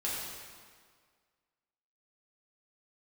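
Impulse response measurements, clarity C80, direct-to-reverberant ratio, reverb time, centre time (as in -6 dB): 1.0 dB, -7.5 dB, 1.8 s, 106 ms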